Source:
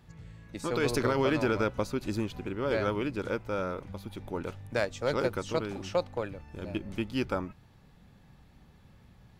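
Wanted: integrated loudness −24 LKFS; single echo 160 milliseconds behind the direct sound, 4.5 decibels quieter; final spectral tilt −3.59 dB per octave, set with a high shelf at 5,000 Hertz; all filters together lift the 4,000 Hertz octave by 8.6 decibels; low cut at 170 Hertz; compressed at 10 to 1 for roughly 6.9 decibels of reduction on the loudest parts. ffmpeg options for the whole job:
ffmpeg -i in.wav -af "highpass=170,equalizer=frequency=4000:width_type=o:gain=7,highshelf=frequency=5000:gain=8.5,acompressor=threshold=-29dB:ratio=10,aecho=1:1:160:0.596,volume=10.5dB" out.wav

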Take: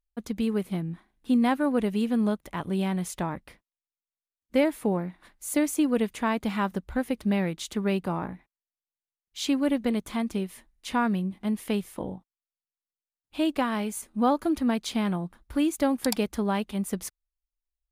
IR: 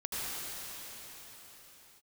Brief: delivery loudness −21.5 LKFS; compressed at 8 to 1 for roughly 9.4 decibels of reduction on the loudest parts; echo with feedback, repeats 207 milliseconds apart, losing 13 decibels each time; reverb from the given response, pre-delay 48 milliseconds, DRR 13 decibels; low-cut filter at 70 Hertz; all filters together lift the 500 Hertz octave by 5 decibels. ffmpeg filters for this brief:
-filter_complex "[0:a]highpass=70,equalizer=frequency=500:width_type=o:gain=6,acompressor=threshold=-24dB:ratio=8,aecho=1:1:207|414|621:0.224|0.0493|0.0108,asplit=2[link_01][link_02];[1:a]atrim=start_sample=2205,adelay=48[link_03];[link_02][link_03]afir=irnorm=-1:irlink=0,volume=-19dB[link_04];[link_01][link_04]amix=inputs=2:normalize=0,volume=9dB"

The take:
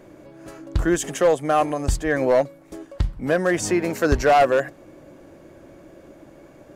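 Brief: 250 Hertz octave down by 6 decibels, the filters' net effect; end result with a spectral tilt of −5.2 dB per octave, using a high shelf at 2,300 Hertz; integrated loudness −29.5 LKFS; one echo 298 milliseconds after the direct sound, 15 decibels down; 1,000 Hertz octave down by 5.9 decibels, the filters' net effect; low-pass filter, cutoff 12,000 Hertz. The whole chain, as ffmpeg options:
ffmpeg -i in.wav -af "lowpass=12000,equalizer=frequency=250:width_type=o:gain=-8.5,equalizer=frequency=1000:width_type=o:gain=-8.5,highshelf=frequency=2300:gain=-3.5,aecho=1:1:298:0.178,volume=-4.5dB" out.wav

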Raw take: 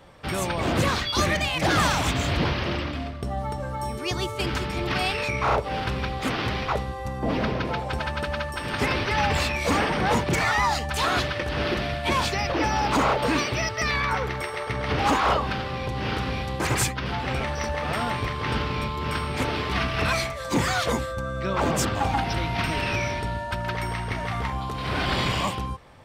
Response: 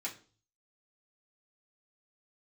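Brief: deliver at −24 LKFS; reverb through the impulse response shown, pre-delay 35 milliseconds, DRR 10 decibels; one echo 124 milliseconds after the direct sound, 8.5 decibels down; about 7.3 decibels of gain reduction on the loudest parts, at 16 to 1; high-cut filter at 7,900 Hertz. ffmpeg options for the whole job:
-filter_complex "[0:a]lowpass=7900,acompressor=threshold=-25dB:ratio=16,aecho=1:1:124:0.376,asplit=2[link_01][link_02];[1:a]atrim=start_sample=2205,adelay=35[link_03];[link_02][link_03]afir=irnorm=-1:irlink=0,volume=-11dB[link_04];[link_01][link_04]amix=inputs=2:normalize=0,volume=5dB"

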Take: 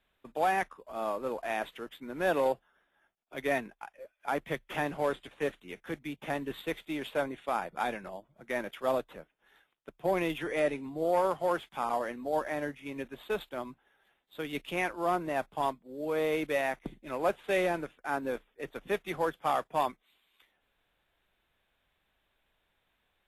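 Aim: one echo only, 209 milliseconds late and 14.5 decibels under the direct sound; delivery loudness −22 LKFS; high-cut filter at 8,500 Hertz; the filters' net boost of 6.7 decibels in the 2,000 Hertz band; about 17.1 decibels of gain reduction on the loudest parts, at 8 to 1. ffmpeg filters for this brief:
ffmpeg -i in.wav -af "lowpass=8500,equalizer=frequency=2000:width_type=o:gain=8,acompressor=threshold=-40dB:ratio=8,aecho=1:1:209:0.188,volume=22.5dB" out.wav

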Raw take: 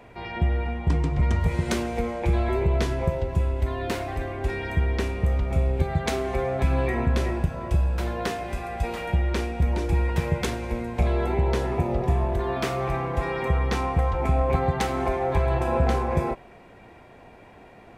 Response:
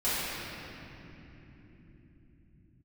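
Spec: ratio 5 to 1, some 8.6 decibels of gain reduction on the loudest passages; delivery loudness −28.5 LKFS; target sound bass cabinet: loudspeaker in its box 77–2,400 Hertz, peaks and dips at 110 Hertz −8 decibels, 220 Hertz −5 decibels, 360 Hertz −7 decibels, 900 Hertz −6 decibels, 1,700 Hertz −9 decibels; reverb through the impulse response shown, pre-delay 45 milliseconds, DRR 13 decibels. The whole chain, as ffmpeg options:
-filter_complex "[0:a]acompressor=threshold=-27dB:ratio=5,asplit=2[link_01][link_02];[1:a]atrim=start_sample=2205,adelay=45[link_03];[link_02][link_03]afir=irnorm=-1:irlink=0,volume=-25dB[link_04];[link_01][link_04]amix=inputs=2:normalize=0,highpass=frequency=77:width=0.5412,highpass=frequency=77:width=1.3066,equalizer=frequency=110:width_type=q:width=4:gain=-8,equalizer=frequency=220:width_type=q:width=4:gain=-5,equalizer=frequency=360:width_type=q:width=4:gain=-7,equalizer=frequency=900:width_type=q:width=4:gain=-6,equalizer=frequency=1700:width_type=q:width=4:gain=-9,lowpass=frequency=2400:width=0.5412,lowpass=frequency=2400:width=1.3066,volume=7.5dB"

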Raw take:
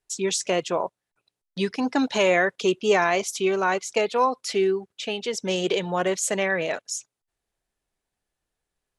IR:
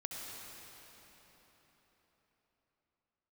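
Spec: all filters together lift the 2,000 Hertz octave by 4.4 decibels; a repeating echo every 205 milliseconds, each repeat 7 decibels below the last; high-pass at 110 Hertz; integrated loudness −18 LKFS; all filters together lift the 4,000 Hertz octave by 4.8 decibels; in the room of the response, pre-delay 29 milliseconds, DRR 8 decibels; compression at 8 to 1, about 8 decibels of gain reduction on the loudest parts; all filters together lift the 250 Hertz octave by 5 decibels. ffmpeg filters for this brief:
-filter_complex "[0:a]highpass=110,equalizer=frequency=250:width_type=o:gain=7,equalizer=frequency=2000:width_type=o:gain=4,equalizer=frequency=4000:width_type=o:gain=5,acompressor=threshold=-21dB:ratio=8,aecho=1:1:205|410|615|820|1025:0.447|0.201|0.0905|0.0407|0.0183,asplit=2[link_01][link_02];[1:a]atrim=start_sample=2205,adelay=29[link_03];[link_02][link_03]afir=irnorm=-1:irlink=0,volume=-8.5dB[link_04];[link_01][link_04]amix=inputs=2:normalize=0,volume=7dB"

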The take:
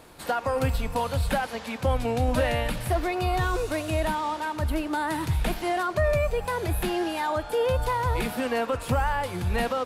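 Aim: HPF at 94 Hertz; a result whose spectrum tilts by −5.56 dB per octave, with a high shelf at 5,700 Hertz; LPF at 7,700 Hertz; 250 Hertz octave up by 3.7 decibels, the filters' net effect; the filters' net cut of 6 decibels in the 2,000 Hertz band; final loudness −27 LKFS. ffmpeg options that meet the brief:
ffmpeg -i in.wav -af "highpass=94,lowpass=7700,equalizer=frequency=250:width_type=o:gain=5,equalizer=frequency=2000:width_type=o:gain=-9,highshelf=frequency=5700:gain=5,volume=0.5dB" out.wav

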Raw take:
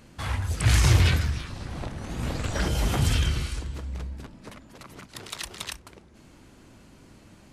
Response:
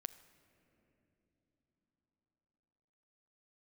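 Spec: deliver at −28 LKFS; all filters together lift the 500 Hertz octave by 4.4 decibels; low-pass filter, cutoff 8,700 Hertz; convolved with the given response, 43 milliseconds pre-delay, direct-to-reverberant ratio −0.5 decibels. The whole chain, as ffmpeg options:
-filter_complex "[0:a]lowpass=8700,equalizer=frequency=500:width_type=o:gain=5.5,asplit=2[link_01][link_02];[1:a]atrim=start_sample=2205,adelay=43[link_03];[link_02][link_03]afir=irnorm=-1:irlink=0,volume=4dB[link_04];[link_01][link_04]amix=inputs=2:normalize=0,volume=-4.5dB"

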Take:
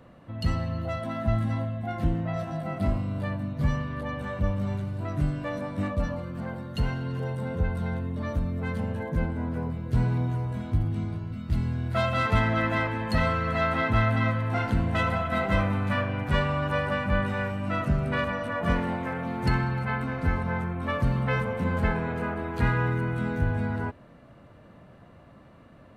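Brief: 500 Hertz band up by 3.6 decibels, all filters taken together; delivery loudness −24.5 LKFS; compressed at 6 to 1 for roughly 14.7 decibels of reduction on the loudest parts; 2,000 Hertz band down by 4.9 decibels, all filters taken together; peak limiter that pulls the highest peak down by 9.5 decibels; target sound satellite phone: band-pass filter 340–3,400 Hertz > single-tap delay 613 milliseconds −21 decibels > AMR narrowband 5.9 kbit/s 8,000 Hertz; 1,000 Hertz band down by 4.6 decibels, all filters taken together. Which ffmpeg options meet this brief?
ffmpeg -i in.wav -af "equalizer=frequency=500:width_type=o:gain=8,equalizer=frequency=1000:width_type=o:gain=-7.5,equalizer=frequency=2000:width_type=o:gain=-3.5,acompressor=threshold=-35dB:ratio=6,alimiter=level_in=9.5dB:limit=-24dB:level=0:latency=1,volume=-9.5dB,highpass=340,lowpass=3400,aecho=1:1:613:0.0891,volume=24dB" -ar 8000 -c:a libopencore_amrnb -b:a 5900 out.amr

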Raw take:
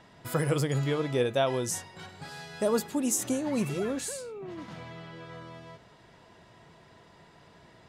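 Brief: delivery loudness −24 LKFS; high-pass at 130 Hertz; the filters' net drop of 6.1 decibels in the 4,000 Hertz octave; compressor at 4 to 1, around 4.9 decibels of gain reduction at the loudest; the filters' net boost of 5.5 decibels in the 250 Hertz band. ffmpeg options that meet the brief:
ffmpeg -i in.wav -af "highpass=130,equalizer=frequency=250:width_type=o:gain=7,equalizer=frequency=4000:width_type=o:gain=-8,acompressor=threshold=-25dB:ratio=4,volume=7dB" out.wav

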